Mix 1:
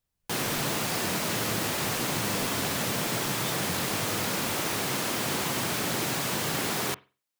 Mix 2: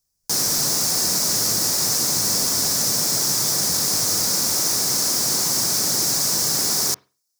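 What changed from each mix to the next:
background: add resonant high shelf 4 kHz +10.5 dB, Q 3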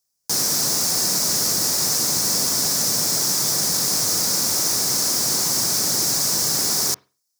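speech: add high-pass 380 Hz 6 dB/octave

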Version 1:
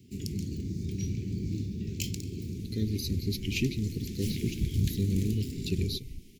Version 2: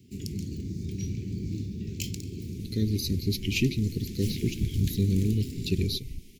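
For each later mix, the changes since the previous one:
speech +4.0 dB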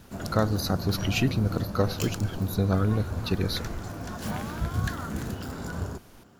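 speech: entry -2.40 s; master: remove Chebyshev band-stop 400–2200 Hz, order 4

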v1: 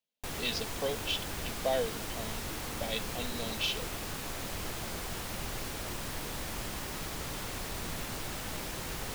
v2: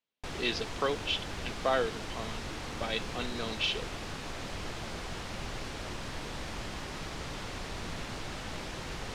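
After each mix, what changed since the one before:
speech: remove static phaser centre 340 Hz, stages 6; master: add low-pass 5.6 kHz 12 dB/octave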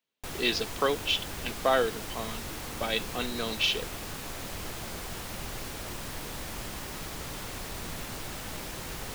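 speech +4.0 dB; master: remove low-pass 5.6 kHz 12 dB/octave

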